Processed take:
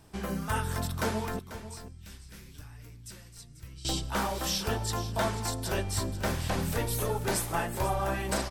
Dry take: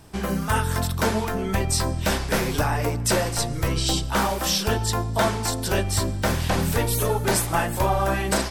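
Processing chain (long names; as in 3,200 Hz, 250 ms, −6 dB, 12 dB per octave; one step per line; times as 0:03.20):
0:01.39–0:03.85: guitar amp tone stack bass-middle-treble 6-0-2
single-tap delay 491 ms −13 dB
level −8 dB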